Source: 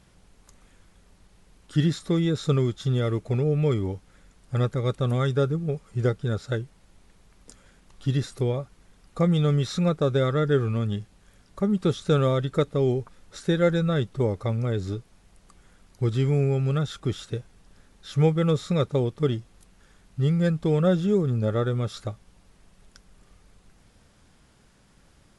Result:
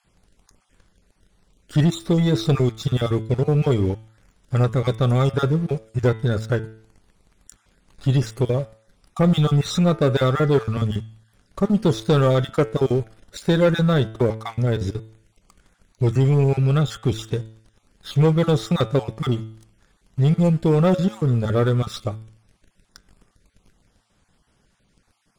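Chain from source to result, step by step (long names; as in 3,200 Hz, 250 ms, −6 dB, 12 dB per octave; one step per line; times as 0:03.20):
time-frequency cells dropped at random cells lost 23%
leveller curve on the samples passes 2
hum removal 110.5 Hz, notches 33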